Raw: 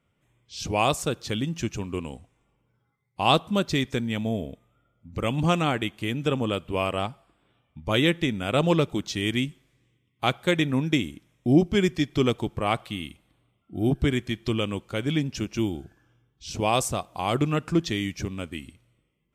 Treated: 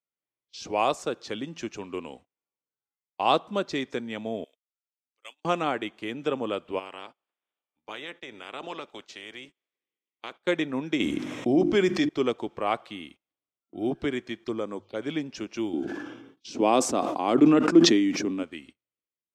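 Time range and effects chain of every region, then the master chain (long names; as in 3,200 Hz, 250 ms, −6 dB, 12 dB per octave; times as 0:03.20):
0:04.44–0:05.45: high-pass filter 330 Hz + first difference
0:06.78–0:10.39: ceiling on every frequency bin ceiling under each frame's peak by 16 dB + downward compressor 1.5 to 1, threshold −55 dBFS
0:11.00–0:12.09: hum removal 49.65 Hz, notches 7 + envelope flattener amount 70%
0:14.44–0:15.02: mains-hum notches 50/100/150 Hz + phaser swept by the level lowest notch 490 Hz, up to 2,800 Hz, full sweep at −26.5 dBFS
0:15.73–0:18.43: high-pass filter 120 Hz 6 dB per octave + parametric band 270 Hz +14 dB 1 octave + level that may fall only so fast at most 40 dB per second
whole clip: dynamic equaliser 3,100 Hz, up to −6 dB, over −42 dBFS, Q 0.87; noise gate −43 dBFS, range −25 dB; three-way crossover with the lows and the highs turned down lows −20 dB, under 260 Hz, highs −20 dB, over 6,400 Hz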